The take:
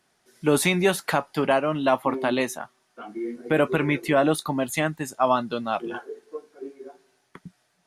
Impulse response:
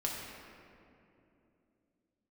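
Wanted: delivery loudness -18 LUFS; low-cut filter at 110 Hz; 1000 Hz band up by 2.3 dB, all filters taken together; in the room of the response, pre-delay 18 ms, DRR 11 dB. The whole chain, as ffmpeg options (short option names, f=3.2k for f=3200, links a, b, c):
-filter_complex "[0:a]highpass=110,equalizer=f=1k:t=o:g=3,asplit=2[a][b];[1:a]atrim=start_sample=2205,adelay=18[c];[b][c]afir=irnorm=-1:irlink=0,volume=-14.5dB[d];[a][d]amix=inputs=2:normalize=0,volume=5dB"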